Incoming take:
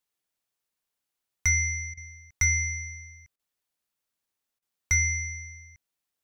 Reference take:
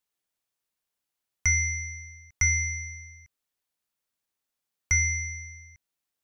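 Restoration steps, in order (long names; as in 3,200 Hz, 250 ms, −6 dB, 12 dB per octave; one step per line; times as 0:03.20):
clipped peaks rebuilt −14.5 dBFS
repair the gap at 0:01.94/0:03.36/0:04.59, 32 ms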